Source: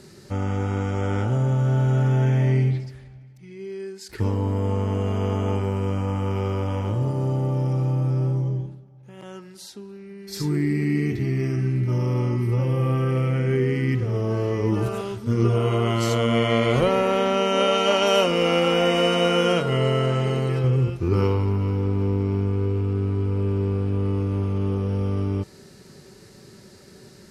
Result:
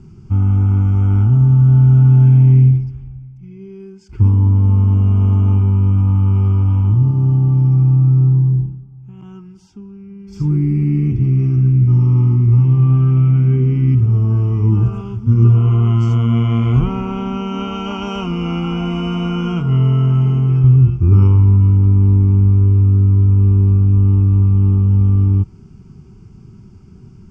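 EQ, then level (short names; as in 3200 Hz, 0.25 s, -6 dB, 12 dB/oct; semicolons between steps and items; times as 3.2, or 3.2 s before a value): RIAA curve playback; low shelf 500 Hz +3 dB; fixed phaser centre 2700 Hz, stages 8; -2.0 dB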